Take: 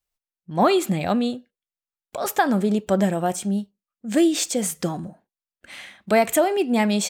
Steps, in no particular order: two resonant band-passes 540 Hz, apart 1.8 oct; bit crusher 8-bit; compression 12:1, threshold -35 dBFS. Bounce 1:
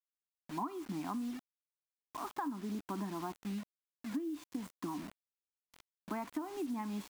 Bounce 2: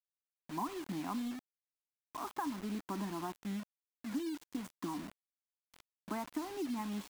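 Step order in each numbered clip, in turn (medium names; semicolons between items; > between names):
two resonant band-passes > bit crusher > compression; two resonant band-passes > compression > bit crusher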